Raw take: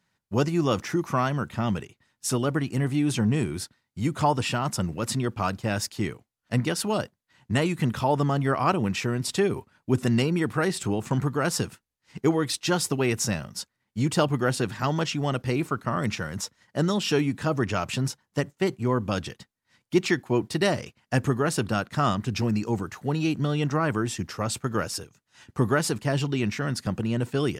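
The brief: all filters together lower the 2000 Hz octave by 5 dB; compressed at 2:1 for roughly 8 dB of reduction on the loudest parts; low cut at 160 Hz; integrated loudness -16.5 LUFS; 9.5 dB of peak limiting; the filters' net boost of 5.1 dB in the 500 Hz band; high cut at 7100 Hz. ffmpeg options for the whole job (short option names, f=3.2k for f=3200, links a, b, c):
-af "highpass=160,lowpass=7.1k,equalizer=f=500:t=o:g=7,equalizer=f=2k:t=o:g=-7.5,acompressor=threshold=-29dB:ratio=2,volume=17dB,alimiter=limit=-5.5dB:level=0:latency=1"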